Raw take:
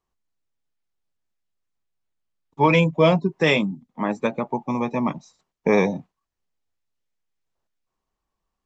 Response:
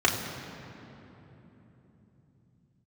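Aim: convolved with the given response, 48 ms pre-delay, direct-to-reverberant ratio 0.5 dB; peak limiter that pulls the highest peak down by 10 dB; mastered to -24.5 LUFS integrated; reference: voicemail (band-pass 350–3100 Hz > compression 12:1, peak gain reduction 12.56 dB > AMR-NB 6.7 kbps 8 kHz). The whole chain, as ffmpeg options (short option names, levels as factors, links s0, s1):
-filter_complex "[0:a]alimiter=limit=0.178:level=0:latency=1,asplit=2[s0][s1];[1:a]atrim=start_sample=2205,adelay=48[s2];[s1][s2]afir=irnorm=-1:irlink=0,volume=0.158[s3];[s0][s3]amix=inputs=2:normalize=0,highpass=350,lowpass=3100,acompressor=threshold=0.0251:ratio=12,volume=5.31" -ar 8000 -c:a libopencore_amrnb -b:a 6700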